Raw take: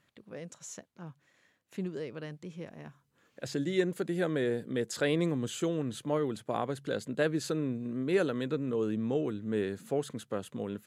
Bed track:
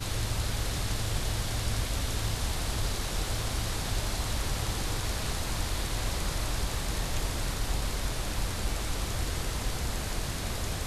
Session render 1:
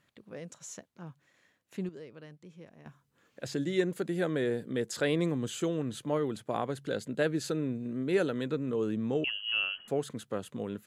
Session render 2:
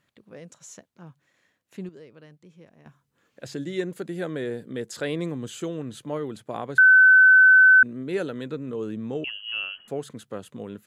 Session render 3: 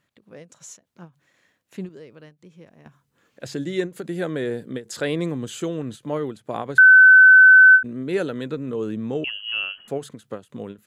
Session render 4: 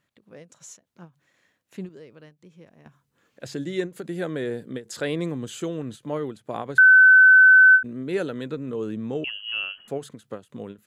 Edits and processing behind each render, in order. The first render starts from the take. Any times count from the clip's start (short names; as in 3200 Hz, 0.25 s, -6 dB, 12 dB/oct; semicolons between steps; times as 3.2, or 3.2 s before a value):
1.89–2.86 gain -8 dB; 6.86–8.39 notch 1100 Hz, Q 8.9; 9.24–9.88 inverted band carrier 3100 Hz
6.78–7.83 bleep 1520 Hz -10 dBFS
AGC gain up to 4 dB; ending taper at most 260 dB/s
gain -2.5 dB